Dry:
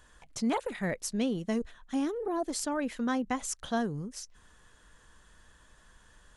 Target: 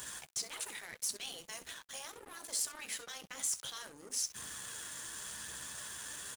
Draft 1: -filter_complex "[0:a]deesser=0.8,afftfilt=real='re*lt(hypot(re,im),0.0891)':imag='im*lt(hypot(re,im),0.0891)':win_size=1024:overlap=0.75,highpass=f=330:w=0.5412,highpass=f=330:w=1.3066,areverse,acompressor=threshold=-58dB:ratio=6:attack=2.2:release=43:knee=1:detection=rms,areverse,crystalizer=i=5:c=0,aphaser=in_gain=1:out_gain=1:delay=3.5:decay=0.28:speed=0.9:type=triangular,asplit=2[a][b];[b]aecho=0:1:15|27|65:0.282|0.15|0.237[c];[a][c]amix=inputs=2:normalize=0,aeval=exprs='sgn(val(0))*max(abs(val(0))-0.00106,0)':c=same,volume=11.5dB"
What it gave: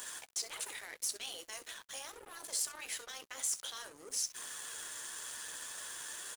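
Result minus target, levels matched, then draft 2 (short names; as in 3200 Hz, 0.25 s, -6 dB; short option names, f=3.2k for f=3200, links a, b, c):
125 Hz band -10.0 dB
-filter_complex "[0:a]deesser=0.8,afftfilt=real='re*lt(hypot(re,im),0.0891)':imag='im*lt(hypot(re,im),0.0891)':win_size=1024:overlap=0.75,highpass=f=92:w=0.5412,highpass=f=92:w=1.3066,areverse,acompressor=threshold=-58dB:ratio=6:attack=2.2:release=43:knee=1:detection=rms,areverse,crystalizer=i=5:c=0,aphaser=in_gain=1:out_gain=1:delay=3.5:decay=0.28:speed=0.9:type=triangular,asplit=2[a][b];[b]aecho=0:1:15|27|65:0.282|0.15|0.237[c];[a][c]amix=inputs=2:normalize=0,aeval=exprs='sgn(val(0))*max(abs(val(0))-0.00106,0)':c=same,volume=11.5dB"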